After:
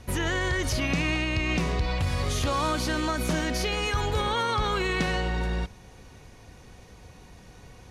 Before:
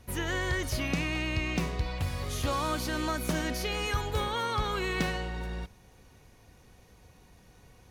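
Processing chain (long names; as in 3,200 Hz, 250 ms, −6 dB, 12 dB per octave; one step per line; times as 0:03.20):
low-pass filter 9,400 Hz 12 dB per octave
brickwall limiter −26 dBFS, peak gain reduction 6 dB
level +8 dB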